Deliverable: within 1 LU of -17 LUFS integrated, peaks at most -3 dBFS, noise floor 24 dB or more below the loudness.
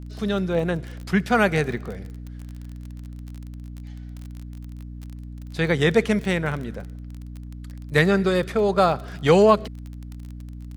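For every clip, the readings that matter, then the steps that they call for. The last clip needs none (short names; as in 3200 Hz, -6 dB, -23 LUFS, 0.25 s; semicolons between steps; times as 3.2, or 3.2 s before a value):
ticks 29/s; hum 60 Hz; harmonics up to 300 Hz; hum level -34 dBFS; loudness -21.5 LUFS; peak -3.0 dBFS; loudness target -17.0 LUFS
-> de-click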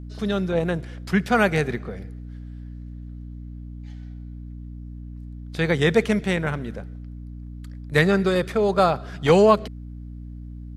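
ticks 0/s; hum 60 Hz; harmonics up to 300 Hz; hum level -34 dBFS
-> de-hum 60 Hz, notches 5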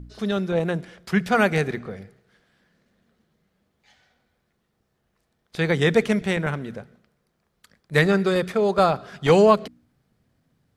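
hum none; loudness -21.5 LUFS; peak -3.5 dBFS; loudness target -17.0 LUFS
-> gain +4.5 dB; limiter -3 dBFS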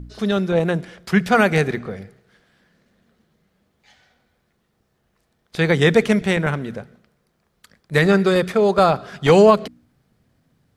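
loudness -17.5 LUFS; peak -3.0 dBFS; noise floor -68 dBFS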